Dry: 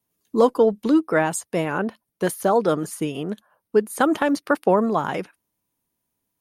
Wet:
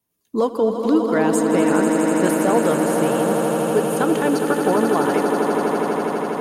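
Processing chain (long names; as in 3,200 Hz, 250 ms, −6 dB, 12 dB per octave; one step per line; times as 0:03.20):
brickwall limiter −10 dBFS, peak gain reduction 4 dB
echo that builds up and dies away 82 ms, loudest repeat 8, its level −8 dB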